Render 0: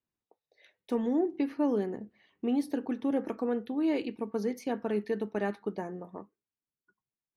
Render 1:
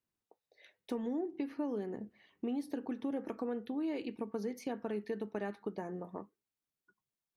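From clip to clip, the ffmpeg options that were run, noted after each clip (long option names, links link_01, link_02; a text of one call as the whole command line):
ffmpeg -i in.wav -af "acompressor=threshold=-36dB:ratio=3" out.wav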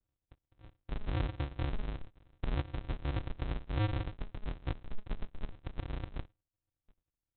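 ffmpeg -i in.wav -af "alimiter=level_in=9dB:limit=-24dB:level=0:latency=1:release=428,volume=-9dB,aresample=8000,acrusher=samples=38:mix=1:aa=0.000001,aresample=44100,volume=7.5dB" out.wav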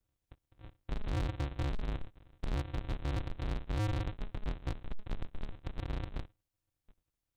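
ffmpeg -i in.wav -af "asoftclip=type=hard:threshold=-34dB,volume=3.5dB" out.wav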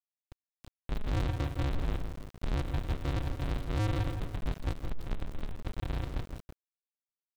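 ffmpeg -i in.wav -filter_complex "[0:a]asplit=2[link_01][link_02];[link_02]adelay=165,lowpass=frequency=2000:poles=1,volume=-7dB,asplit=2[link_03][link_04];[link_04]adelay=165,lowpass=frequency=2000:poles=1,volume=0.48,asplit=2[link_05][link_06];[link_06]adelay=165,lowpass=frequency=2000:poles=1,volume=0.48,asplit=2[link_07][link_08];[link_08]adelay=165,lowpass=frequency=2000:poles=1,volume=0.48,asplit=2[link_09][link_10];[link_10]adelay=165,lowpass=frequency=2000:poles=1,volume=0.48,asplit=2[link_11][link_12];[link_12]adelay=165,lowpass=frequency=2000:poles=1,volume=0.48[link_13];[link_01][link_03][link_05][link_07][link_09][link_11][link_13]amix=inputs=7:normalize=0,aeval=exprs='val(0)*gte(abs(val(0)),0.00596)':channel_layout=same,volume=3dB" out.wav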